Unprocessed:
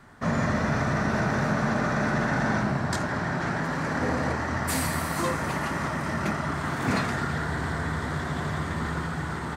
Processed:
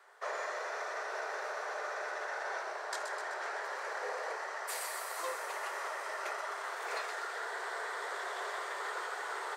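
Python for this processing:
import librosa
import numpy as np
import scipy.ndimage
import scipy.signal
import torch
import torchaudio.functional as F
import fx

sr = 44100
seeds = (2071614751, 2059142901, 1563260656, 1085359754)

p1 = scipy.signal.sosfilt(scipy.signal.butter(12, 400.0, 'highpass', fs=sr, output='sos'), x)
p2 = fx.rider(p1, sr, range_db=10, speed_s=0.5)
p3 = p2 + fx.echo_wet_highpass(p2, sr, ms=127, feedback_pct=63, hz=4300.0, wet_db=-5.5, dry=0)
y = p3 * 10.0 ** (-8.5 / 20.0)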